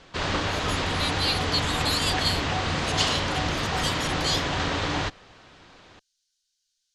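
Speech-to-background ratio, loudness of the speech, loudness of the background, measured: -3.0 dB, -29.0 LUFS, -26.0 LUFS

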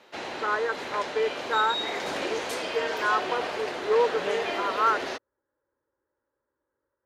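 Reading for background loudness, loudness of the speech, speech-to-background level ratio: -31.5 LUFS, -28.5 LUFS, 3.0 dB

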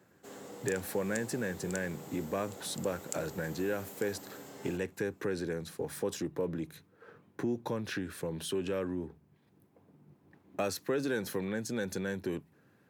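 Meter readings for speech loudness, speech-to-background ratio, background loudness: -36.5 LUFS, 10.0 dB, -46.5 LUFS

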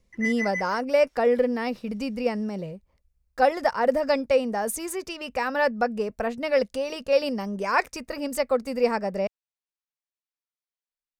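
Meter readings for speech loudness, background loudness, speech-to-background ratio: -25.5 LUFS, -30.5 LUFS, 5.0 dB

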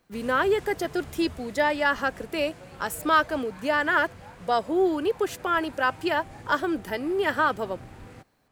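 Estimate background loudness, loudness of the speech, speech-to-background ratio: -45.5 LUFS, -26.0 LUFS, 19.5 dB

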